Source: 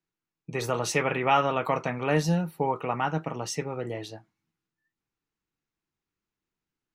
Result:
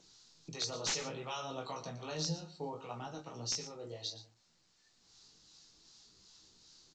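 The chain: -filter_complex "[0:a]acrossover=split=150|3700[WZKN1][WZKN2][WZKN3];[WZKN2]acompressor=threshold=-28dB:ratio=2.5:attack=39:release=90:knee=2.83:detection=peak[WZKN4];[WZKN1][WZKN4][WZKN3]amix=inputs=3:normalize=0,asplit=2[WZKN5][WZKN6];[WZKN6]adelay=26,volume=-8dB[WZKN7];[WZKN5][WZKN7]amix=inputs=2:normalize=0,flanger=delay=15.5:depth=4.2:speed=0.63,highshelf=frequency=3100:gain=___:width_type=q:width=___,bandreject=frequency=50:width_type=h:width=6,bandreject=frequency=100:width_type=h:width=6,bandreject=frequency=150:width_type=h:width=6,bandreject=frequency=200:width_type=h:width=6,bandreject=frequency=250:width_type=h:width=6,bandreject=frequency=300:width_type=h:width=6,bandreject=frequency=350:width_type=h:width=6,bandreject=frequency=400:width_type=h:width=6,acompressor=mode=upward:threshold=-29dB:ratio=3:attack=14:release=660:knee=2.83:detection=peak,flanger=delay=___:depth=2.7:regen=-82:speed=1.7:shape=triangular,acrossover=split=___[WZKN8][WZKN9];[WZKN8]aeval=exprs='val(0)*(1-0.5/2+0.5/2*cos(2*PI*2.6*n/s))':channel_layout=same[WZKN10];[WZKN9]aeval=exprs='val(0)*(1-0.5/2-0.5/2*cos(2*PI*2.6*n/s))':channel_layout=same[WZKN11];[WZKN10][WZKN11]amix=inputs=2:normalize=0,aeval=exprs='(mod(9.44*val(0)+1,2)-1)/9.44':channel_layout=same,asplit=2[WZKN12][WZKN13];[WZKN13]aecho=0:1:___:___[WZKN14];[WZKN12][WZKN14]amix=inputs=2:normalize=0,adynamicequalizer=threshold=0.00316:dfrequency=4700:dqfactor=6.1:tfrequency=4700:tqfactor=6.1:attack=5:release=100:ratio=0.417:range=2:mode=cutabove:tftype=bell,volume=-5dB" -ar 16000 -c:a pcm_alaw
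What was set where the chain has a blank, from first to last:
12, 3, 0, 750, 117, 0.211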